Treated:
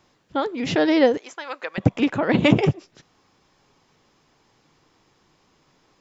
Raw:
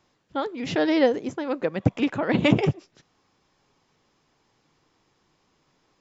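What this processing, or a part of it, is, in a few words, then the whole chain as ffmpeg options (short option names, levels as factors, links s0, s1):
parallel compression: -filter_complex "[0:a]asettb=1/sr,asplit=3[s0][s1][s2];[s0]atrim=end=1.174[s3];[s1]atrim=start=1.17:end=1.78,asetpts=PTS-STARTPTS,afade=t=in:d=0.004:c=qsin,afade=t=out:st=0.606:d=0.004:c=qsin,highpass=1100[s4];[s2]atrim=start=1.776[s5];[s3][s4]acrossfade=d=0.004:c1=hsin:c2=qsin[s6];[s6][s5]acrossfade=d=0.004:c1=qsin:c2=hsin,asplit=2[s7][s8];[s8]acompressor=threshold=0.0316:ratio=6,volume=0.501[s9];[s7][s9]amix=inputs=2:normalize=0,volume=1.26"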